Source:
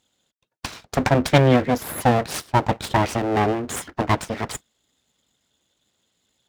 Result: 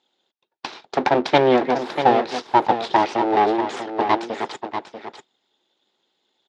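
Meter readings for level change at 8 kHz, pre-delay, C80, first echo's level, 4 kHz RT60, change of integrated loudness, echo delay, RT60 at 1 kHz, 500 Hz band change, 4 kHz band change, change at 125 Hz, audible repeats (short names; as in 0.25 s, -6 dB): under -10 dB, none, none, -8.5 dB, none, +1.0 dB, 0.641 s, none, +2.5 dB, +0.5 dB, -13.5 dB, 1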